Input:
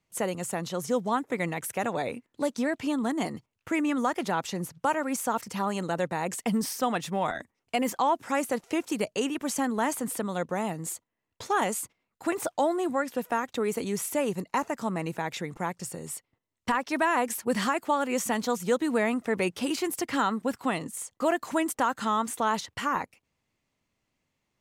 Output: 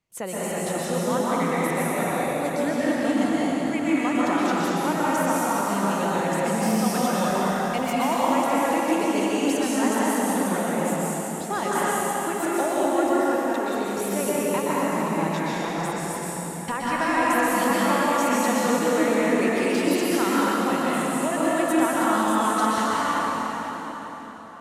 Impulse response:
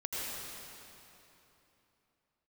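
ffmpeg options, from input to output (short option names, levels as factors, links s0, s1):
-filter_complex "[0:a]asettb=1/sr,asplit=3[s0][s1][s2];[s0]atrim=end=13.174[s3];[s1]atrim=start=13.17:end=13.99,asetpts=PTS-STARTPTS,afade=t=in:d=0.004:c=qsin,afade=t=out:st=0.816:d=0.004:c=qsin,acompressor=threshold=0.0355:ratio=6[s4];[s2]atrim=start=13.986[s5];[s3][s4]acrossfade=d=0.004:c1=hsin:c2=qsin[s6];[s6][s5]acrossfade=d=0.004:c1=qsin:c2=hsin[s7];[1:a]atrim=start_sample=2205,asetrate=29106,aresample=44100[s8];[s7][s8]afir=irnorm=-1:irlink=0,volume=0.841"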